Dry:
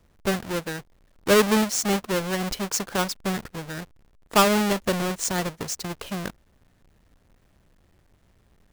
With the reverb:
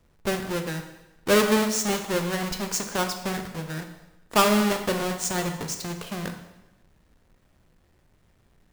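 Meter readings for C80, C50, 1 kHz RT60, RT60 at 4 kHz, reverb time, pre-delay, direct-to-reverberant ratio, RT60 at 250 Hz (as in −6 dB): 10.0 dB, 8.0 dB, 0.95 s, 0.90 s, 0.95 s, 4 ms, 4.5 dB, 1.0 s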